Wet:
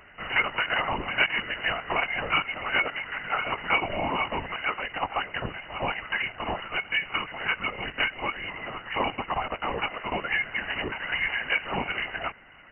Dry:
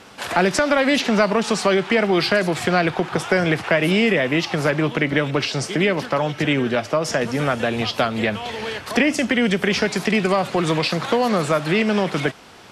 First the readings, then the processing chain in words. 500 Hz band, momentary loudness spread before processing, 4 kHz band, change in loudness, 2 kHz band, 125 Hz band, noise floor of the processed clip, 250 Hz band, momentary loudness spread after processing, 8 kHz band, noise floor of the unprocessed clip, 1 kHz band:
-16.0 dB, 5 LU, -6.0 dB, -8.0 dB, -4.0 dB, -16.5 dB, -47 dBFS, -19.5 dB, 7 LU, under -40 dB, -38 dBFS, -5.5 dB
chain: brick-wall FIR high-pass 600 Hz; LPC vocoder at 8 kHz whisper; frequency inversion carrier 2.9 kHz; trim -4.5 dB

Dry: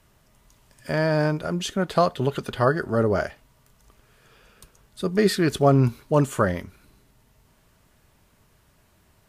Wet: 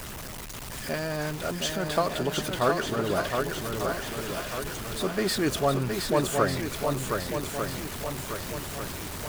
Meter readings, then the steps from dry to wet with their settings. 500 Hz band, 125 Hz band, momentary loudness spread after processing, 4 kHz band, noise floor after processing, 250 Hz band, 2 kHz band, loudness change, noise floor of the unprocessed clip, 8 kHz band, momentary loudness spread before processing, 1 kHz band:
-4.0 dB, -7.0 dB, 8 LU, +3.5 dB, -38 dBFS, -5.0 dB, -0.5 dB, -6.0 dB, -61 dBFS, +6.0 dB, 8 LU, -2.0 dB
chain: jump at every zero crossing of -25.5 dBFS; harmonic-percussive split harmonic -9 dB; shuffle delay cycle 1196 ms, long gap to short 1.5:1, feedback 45%, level -4.5 dB; trim -3.5 dB

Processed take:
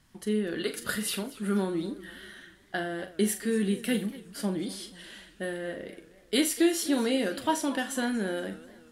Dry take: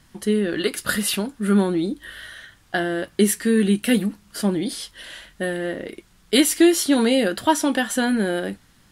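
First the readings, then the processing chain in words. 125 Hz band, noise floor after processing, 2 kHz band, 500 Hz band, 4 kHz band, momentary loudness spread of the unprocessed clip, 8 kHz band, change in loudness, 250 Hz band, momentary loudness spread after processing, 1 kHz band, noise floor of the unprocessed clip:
-9.0 dB, -58 dBFS, -8.5 dB, -8.5 dB, -8.5 dB, 16 LU, -8.5 dB, -9.0 dB, -9.0 dB, 16 LU, -8.5 dB, -56 dBFS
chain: flutter echo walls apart 7.2 m, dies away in 0.26 s; modulated delay 241 ms, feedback 48%, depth 176 cents, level -18 dB; trim -9 dB

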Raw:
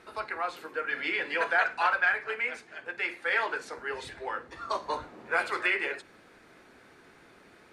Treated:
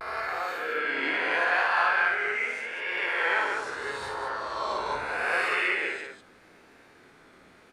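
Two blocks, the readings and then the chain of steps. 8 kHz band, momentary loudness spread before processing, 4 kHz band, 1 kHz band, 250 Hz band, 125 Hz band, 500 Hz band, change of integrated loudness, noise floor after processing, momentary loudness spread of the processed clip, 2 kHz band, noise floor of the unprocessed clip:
+4.0 dB, 11 LU, +4.0 dB, +3.0 dB, +2.5 dB, +3.0 dB, +2.5 dB, +3.0 dB, -56 dBFS, 10 LU, +3.0 dB, -57 dBFS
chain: reverse spectral sustain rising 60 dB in 2.00 s; vibrato 0.79 Hz 74 cents; loudspeakers at several distances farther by 19 m -3 dB, 68 m -6 dB; trim -5 dB

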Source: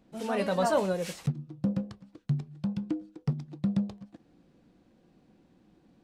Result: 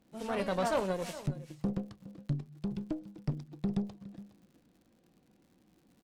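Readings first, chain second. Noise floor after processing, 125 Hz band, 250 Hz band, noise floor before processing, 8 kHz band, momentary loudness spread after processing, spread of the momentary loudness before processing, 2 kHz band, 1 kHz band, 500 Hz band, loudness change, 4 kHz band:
-69 dBFS, -5.0 dB, -4.5 dB, -65 dBFS, no reading, 16 LU, 10 LU, -3.5 dB, -4.0 dB, -4.5 dB, -4.5 dB, -3.5 dB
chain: delay 414 ms -15.5 dB; crackle 120 per s -51 dBFS; Chebyshev shaper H 6 -19 dB, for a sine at -14 dBFS; trim -5 dB

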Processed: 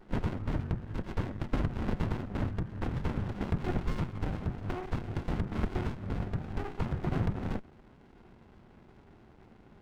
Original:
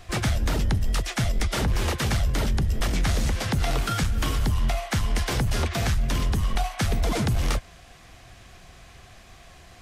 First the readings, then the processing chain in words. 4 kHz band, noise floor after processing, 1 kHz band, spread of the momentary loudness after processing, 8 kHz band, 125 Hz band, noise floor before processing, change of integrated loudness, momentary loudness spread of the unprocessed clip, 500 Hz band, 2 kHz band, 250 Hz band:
-20.5 dB, -57 dBFS, -9.5 dB, 4 LU, under -25 dB, -8.0 dB, -49 dBFS, -9.5 dB, 2 LU, -7.0 dB, -13.5 dB, -4.5 dB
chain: small resonant body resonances 550/1400 Hz, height 7 dB; mistuned SSB -320 Hz 180–2100 Hz; sliding maximum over 65 samples

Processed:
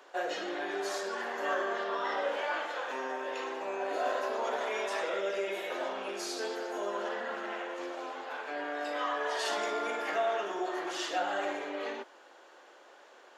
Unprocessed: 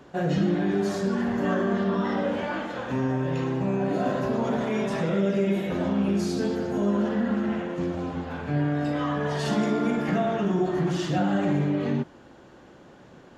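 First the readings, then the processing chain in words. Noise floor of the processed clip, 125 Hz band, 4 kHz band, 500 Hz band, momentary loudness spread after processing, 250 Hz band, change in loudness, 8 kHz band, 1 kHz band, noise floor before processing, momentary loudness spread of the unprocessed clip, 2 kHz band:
-56 dBFS, under -35 dB, 0.0 dB, -6.0 dB, 6 LU, -19.5 dB, -8.0 dB, 0.0 dB, -1.5 dB, -50 dBFS, 5 LU, -0.5 dB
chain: Bessel high-pass 650 Hz, order 6

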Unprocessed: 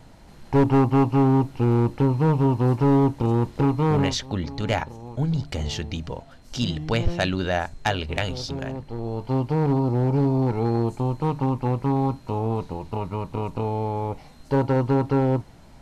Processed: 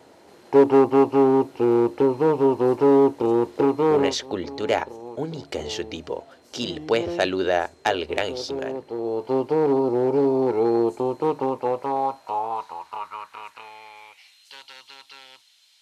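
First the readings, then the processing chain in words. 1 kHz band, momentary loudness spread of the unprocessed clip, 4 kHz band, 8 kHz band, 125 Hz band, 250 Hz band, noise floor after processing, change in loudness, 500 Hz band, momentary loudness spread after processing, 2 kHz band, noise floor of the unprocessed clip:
+1.5 dB, 11 LU, 0.0 dB, no reading, -15.0 dB, -1.5 dB, -56 dBFS, +1.5 dB, +6.0 dB, 15 LU, 0.0 dB, -47 dBFS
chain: peaking EQ 81 Hz +14.5 dB 0.71 oct; high-pass sweep 390 Hz -> 3.4 kHz, 11.30–14.63 s

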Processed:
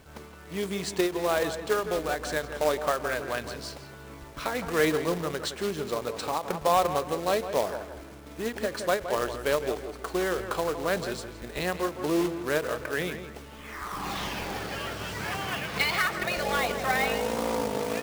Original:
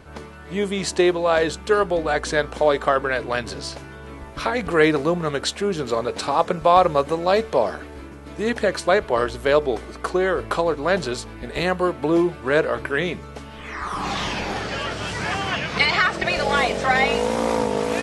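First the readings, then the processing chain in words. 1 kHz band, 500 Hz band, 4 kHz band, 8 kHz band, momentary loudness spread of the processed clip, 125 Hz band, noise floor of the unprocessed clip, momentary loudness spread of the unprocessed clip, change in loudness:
-8.0 dB, -8.0 dB, -6.5 dB, -3.0 dB, 12 LU, -7.5 dB, -39 dBFS, 13 LU, -7.5 dB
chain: companded quantiser 4-bit; tape echo 165 ms, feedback 37%, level -8.5 dB, low-pass 2.5 kHz; endings held to a fixed fall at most 210 dB/s; trim -8 dB

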